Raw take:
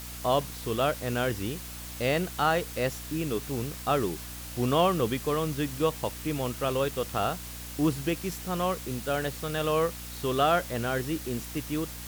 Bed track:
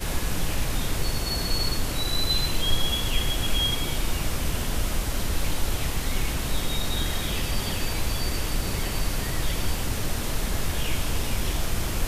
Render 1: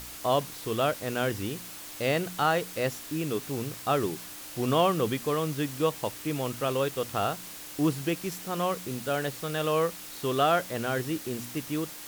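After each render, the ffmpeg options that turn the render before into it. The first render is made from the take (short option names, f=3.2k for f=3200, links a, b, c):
-af "bandreject=f=60:t=h:w=4,bandreject=f=120:t=h:w=4,bandreject=f=180:t=h:w=4,bandreject=f=240:t=h:w=4"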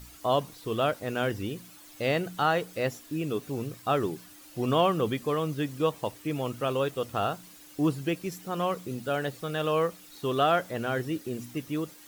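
-af "afftdn=nr=11:nf=-43"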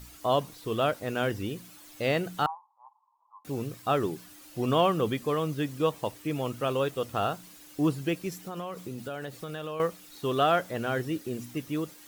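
-filter_complex "[0:a]asettb=1/sr,asplit=3[a][b][c];[a]atrim=end=2.464[d];[b]atrim=start=2.46:end=3.45,asetpts=PTS-STARTPTS,afade=t=in:d=0.004:c=qsin,afade=t=out:st=0.986:d=0.004:c=qsin,asuperpass=centerf=950:order=8:qfactor=3.7[e];[c]atrim=start=3.446[f];[d][e]acrossfade=d=0.004:c1=hsin:c2=qsin[g];[g][f]acrossfade=d=0.004:c1=qsin:c2=hsin,asettb=1/sr,asplit=3[h][i][j];[h]atrim=end=8.404[k];[i]atrim=start=8.4:end=9.8,asetpts=PTS-STARTPTS,afade=t=in:d=0.004:c=qsin,afade=t=out:st=1.396:d=0.004:c=qsin,acompressor=threshold=-32dB:ratio=6:attack=3.2:release=140:knee=1:detection=peak[l];[j]atrim=start=9.796[m];[k][l]acrossfade=d=0.004:c1=hsin:c2=qsin[n];[n][m]acrossfade=d=0.004:c1=qsin:c2=hsin"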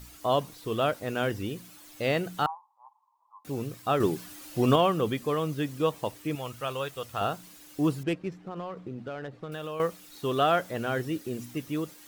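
-filter_complex "[0:a]asettb=1/sr,asplit=3[a][b][c];[a]atrim=end=4.004[d];[b]atrim=start=4:end=4.76,asetpts=PTS-STARTPTS,afade=t=in:d=0.004:c=qsin,afade=t=out:st=0.756:d=0.004:c=qsin,acontrast=29[e];[c]atrim=start=4.756[f];[d][e]acrossfade=d=0.004:c1=hsin:c2=qsin[g];[g][f]acrossfade=d=0.004:c1=qsin:c2=hsin,asettb=1/sr,asplit=3[h][i][j];[h]atrim=end=6.354[k];[i]atrim=start=6.35:end=7.21,asetpts=PTS-STARTPTS,afade=t=in:d=0.004:c=qsin,afade=t=out:st=0.856:d=0.004:c=qsin,equalizer=f=280:t=o:w=2:g=-10.5[l];[j]atrim=start=7.206[m];[k][l]acrossfade=d=0.004:c1=hsin:c2=qsin[n];[n][m]acrossfade=d=0.004:c1=qsin:c2=hsin,asettb=1/sr,asplit=3[o][p][q];[o]atrim=end=8.034[r];[p]atrim=start=8.03:end=9.52,asetpts=PTS-STARTPTS,afade=t=in:d=0.004:c=qsin,afade=t=out:st=1.486:d=0.004:c=qsin,adynamicsmooth=sensitivity=6:basefreq=1.6k[s];[q]atrim=start=9.516[t];[r][s]acrossfade=d=0.004:c1=hsin:c2=qsin[u];[u][t]acrossfade=d=0.004:c1=qsin:c2=hsin"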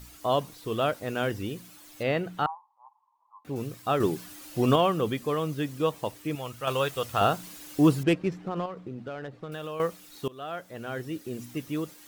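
-filter_complex "[0:a]asettb=1/sr,asplit=3[a][b][c];[a]atrim=end=2.034[d];[b]atrim=start=2.03:end=3.56,asetpts=PTS-STARTPTS,afade=t=in:d=0.004:c=qsin,afade=t=out:st=1.526:d=0.004:c=qsin,bass=f=250:g=0,treble=f=4k:g=-11[e];[c]atrim=start=3.556[f];[d][e]acrossfade=d=0.004:c1=hsin:c2=qsin[g];[g][f]acrossfade=d=0.004:c1=qsin:c2=hsin,asettb=1/sr,asplit=3[h][i][j];[h]atrim=end=6.674[k];[i]atrim=start=6.67:end=8.66,asetpts=PTS-STARTPTS,afade=t=in:d=0.004:c=qsin,afade=t=out:st=1.986:d=0.004:c=qsin,acontrast=53[l];[j]atrim=start=8.656[m];[k][l]acrossfade=d=0.004:c1=hsin:c2=qsin[n];[n][m]acrossfade=d=0.004:c1=qsin:c2=hsin,asplit=2[o][p];[o]atrim=end=10.28,asetpts=PTS-STARTPTS,afade=t=out:st=10.276:d=0.004:c=hsin:silence=0.0749894[q];[p]atrim=start=10.28,asetpts=PTS-STARTPTS,afade=t=in:d=1.27:silence=0.0749894[r];[q][r]concat=n=2:v=0:a=1"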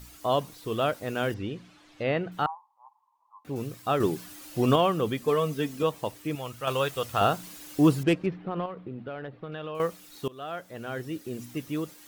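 -filter_complex "[0:a]asettb=1/sr,asplit=3[a][b][c];[a]atrim=end=1.344[d];[b]atrim=start=1.34:end=2.32,asetpts=PTS-STARTPTS,afade=t=in:d=0.004:c=qsin,afade=t=out:st=0.976:d=0.004:c=qsin,lowpass=3.7k[e];[c]atrim=start=2.316[f];[d][e]acrossfade=d=0.004:c1=hsin:c2=qsin[g];[g][f]acrossfade=d=0.004:c1=qsin:c2=hsin,asettb=1/sr,asplit=3[h][i][j];[h]atrim=end=5.274[k];[i]atrim=start=5.27:end=5.83,asetpts=PTS-STARTPTS,afade=t=in:d=0.004:c=qsin,afade=t=out:st=0.556:d=0.004:c=qsin,aecho=1:1:4.5:0.87,atrim=end_sample=24696[l];[j]atrim=start=5.826[m];[k][l]acrossfade=d=0.004:c1=hsin:c2=qsin[n];[n][m]acrossfade=d=0.004:c1=qsin:c2=hsin,asettb=1/sr,asplit=3[o][p][q];[o]atrim=end=8.264[r];[p]atrim=start=8.26:end=9.75,asetpts=PTS-STARTPTS,afade=t=in:d=0.004:c=qsin,afade=t=out:st=1.486:d=0.004:c=qsin,lowpass=f=3.7k:w=0.5412,lowpass=f=3.7k:w=1.3066[s];[q]atrim=start=9.746[t];[r][s]acrossfade=d=0.004:c1=hsin:c2=qsin[u];[u][t]acrossfade=d=0.004:c1=qsin:c2=hsin"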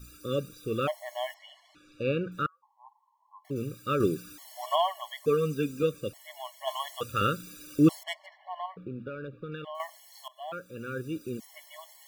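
-filter_complex "[0:a]acrossover=split=3400[a][b];[b]acrusher=bits=5:mode=log:mix=0:aa=0.000001[c];[a][c]amix=inputs=2:normalize=0,afftfilt=real='re*gt(sin(2*PI*0.57*pts/sr)*(1-2*mod(floor(b*sr/1024/570),2)),0)':imag='im*gt(sin(2*PI*0.57*pts/sr)*(1-2*mod(floor(b*sr/1024/570),2)),0)':win_size=1024:overlap=0.75"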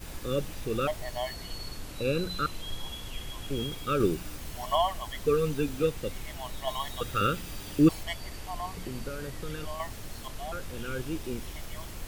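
-filter_complex "[1:a]volume=-14dB[a];[0:a][a]amix=inputs=2:normalize=0"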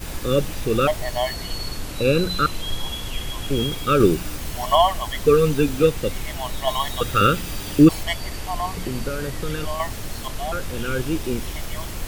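-af "volume=10dB,alimiter=limit=-3dB:level=0:latency=1"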